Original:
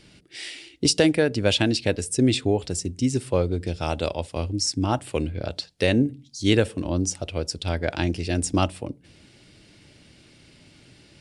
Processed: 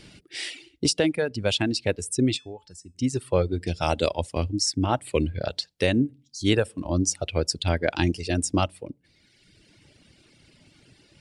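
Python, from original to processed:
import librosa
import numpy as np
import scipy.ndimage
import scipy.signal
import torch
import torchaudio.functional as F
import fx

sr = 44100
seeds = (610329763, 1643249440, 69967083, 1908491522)

y = fx.dereverb_blind(x, sr, rt60_s=1.3)
y = fx.comb_fb(y, sr, f0_hz=870.0, decay_s=0.26, harmonics='all', damping=0.0, mix_pct=80, at=(2.36, 2.94), fade=0.02)
y = fx.rider(y, sr, range_db=4, speed_s=0.5)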